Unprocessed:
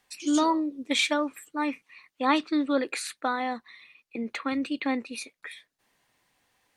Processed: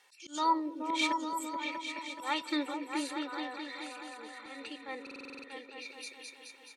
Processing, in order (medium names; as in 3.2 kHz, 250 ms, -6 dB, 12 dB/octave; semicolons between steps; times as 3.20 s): frequency weighting A; 1.12–1.55 s: spectral selection erased 240–5000 Hz; high-pass 100 Hz; comb 2.2 ms, depth 61%; slow attack 520 ms; 2.68–4.80 s: compression 4:1, threshold -45 dBFS, peak gain reduction 15 dB; delay with an opening low-pass 213 ms, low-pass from 200 Hz, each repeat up 2 oct, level 0 dB; buffer glitch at 5.02 s, samples 2048, times 8; trim +3.5 dB